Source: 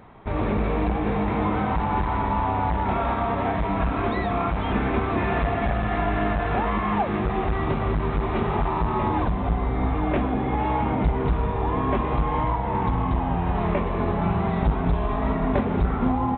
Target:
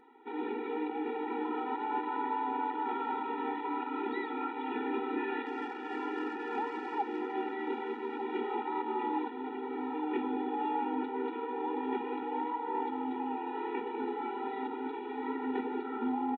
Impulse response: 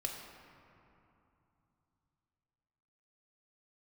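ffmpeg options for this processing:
-filter_complex "[0:a]asettb=1/sr,asplit=3[link_01][link_02][link_03];[link_01]atrim=end=5.464[link_04];[link_02]atrim=start=5.46:end=7.34,asetpts=PTS-STARTPTS,afade=type=in:duration=0.004:curve=qsin,afade=type=out:start_time=1.876:duration=0.004:curve=qsin,adynamicsmooth=sensitivity=3.5:basefreq=3400[link_05];[link_03]atrim=start=7.336[link_06];[link_04][link_05]acrossfade=duration=0.004:curve1=hsin:curve2=qsin[link_07];[link_07][link_06]acrossfade=duration=0.004:curve1=qsin:curve2=hsin,asplit=2[link_08][link_09];[link_09]aecho=0:1:1195:0.299[link_10];[link_08][link_10]amix=inputs=2:normalize=0,afftfilt=real='re*eq(mod(floor(b*sr/1024/250),2),1)':imag='im*eq(mod(floor(b*sr/1024/250),2),1)':win_size=1024:overlap=0.75,volume=-7dB"

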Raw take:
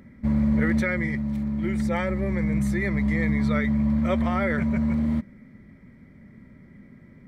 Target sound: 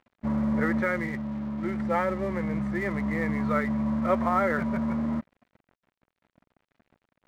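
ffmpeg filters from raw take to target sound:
ffmpeg -i in.wav -af "lowpass=frequency=1200:width_type=q:width=1.6,aemphasis=mode=production:type=bsi,aeval=exprs='sgn(val(0))*max(abs(val(0))-0.00376,0)':channel_layout=same,volume=1.5dB" out.wav

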